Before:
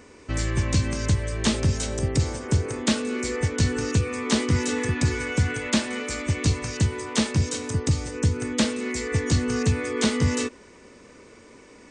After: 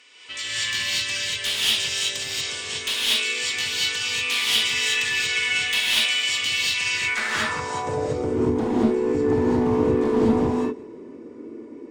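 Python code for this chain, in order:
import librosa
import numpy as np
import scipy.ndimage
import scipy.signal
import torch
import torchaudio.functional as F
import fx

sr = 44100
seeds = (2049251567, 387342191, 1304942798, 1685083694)

p1 = fx.high_shelf(x, sr, hz=5300.0, db=9.5)
p2 = fx.notch(p1, sr, hz=6200.0, q=23.0)
p3 = 10.0 ** (-20.0 / 20.0) * np.tanh(p2 / 10.0 ** (-20.0 / 20.0))
p4 = p2 + F.gain(torch.from_numpy(p3), -7.0).numpy()
p5 = fx.filter_sweep_bandpass(p4, sr, from_hz=3100.0, to_hz=310.0, start_s=6.69, end_s=8.37, q=3.6)
p6 = np.clip(p5, -10.0 ** (-29.0 / 20.0), 10.0 ** (-29.0 / 20.0))
p7 = p6 + fx.echo_feedback(p6, sr, ms=174, feedback_pct=55, wet_db=-24, dry=0)
p8 = fx.rev_gated(p7, sr, seeds[0], gate_ms=260, shape='rising', drr_db=-7.5)
y = F.gain(torch.from_numpy(p8), 6.0).numpy()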